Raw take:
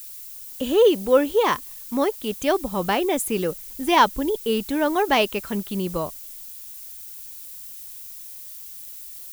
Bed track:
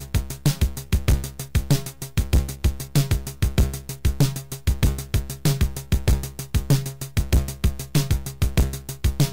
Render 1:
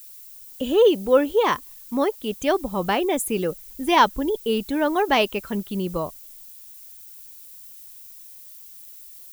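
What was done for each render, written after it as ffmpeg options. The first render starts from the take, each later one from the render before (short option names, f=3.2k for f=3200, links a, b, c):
-af "afftdn=nr=6:nf=-39"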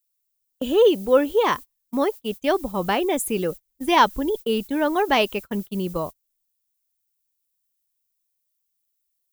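-af "agate=range=-32dB:threshold=-30dB:ratio=16:detection=peak"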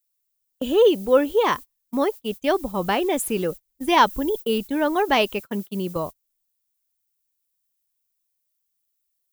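-filter_complex "[0:a]asettb=1/sr,asplit=3[a][b][c];[a]atrim=end=2.934[d];[b]atrim=start=2.93:end=3.46,asetpts=PTS-STARTPTS,afade=t=in:d=0.004:c=qsin,afade=t=out:st=0.526:d=0.004:c=qsin,aeval=exprs='val(0)*gte(abs(val(0)),0.0119)':c=same[e];[c]atrim=start=3.456[f];[d][e]acrossfade=d=0.004:c1=hsin:c2=qsin[g];[g][f]acrossfade=d=0.004:c1=qsin:c2=hsin,asettb=1/sr,asplit=3[h][i][j];[h]atrim=end=4.074[k];[i]atrim=start=4.07:end=4.58,asetpts=PTS-STARTPTS,afade=t=in:d=0.004:c=qsin,afade=t=out:st=0.506:d=0.004:c=qsin,highshelf=f=9.6k:g=5.5[l];[j]atrim=start=4.576[m];[k][l]acrossfade=d=0.004:c1=hsin:c2=qsin[n];[n][m]acrossfade=d=0.004:c1=qsin:c2=hsin,asettb=1/sr,asplit=3[o][p][q];[o]atrim=end=5.404[r];[p]atrim=start=5.4:end=5.96,asetpts=PTS-STARTPTS,afade=t=in:d=0.004:c=qsin,afade=t=out:st=0.556:d=0.004:c=qsin,highpass=140[s];[q]atrim=start=5.956[t];[r][s]acrossfade=d=0.004:c1=hsin:c2=qsin[u];[u][t]acrossfade=d=0.004:c1=qsin:c2=hsin"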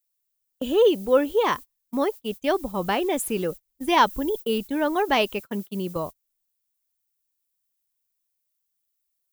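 -af "volume=-2dB"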